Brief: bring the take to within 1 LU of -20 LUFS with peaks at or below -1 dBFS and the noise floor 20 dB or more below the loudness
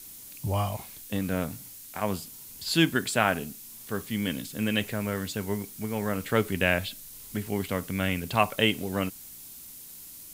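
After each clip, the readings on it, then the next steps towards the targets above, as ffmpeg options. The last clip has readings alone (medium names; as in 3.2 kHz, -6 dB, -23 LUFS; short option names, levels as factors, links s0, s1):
noise floor -46 dBFS; noise floor target -49 dBFS; loudness -29.0 LUFS; peak level -5.5 dBFS; loudness target -20.0 LUFS
-> -af "afftdn=nr=6:nf=-46"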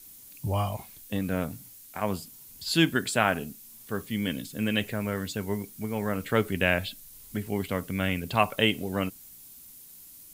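noise floor -50 dBFS; loudness -29.0 LUFS; peak level -5.5 dBFS; loudness target -20.0 LUFS
-> -af "volume=2.82,alimiter=limit=0.891:level=0:latency=1"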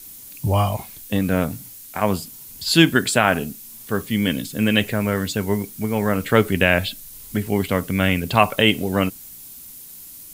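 loudness -20.5 LUFS; peak level -1.0 dBFS; noise floor -41 dBFS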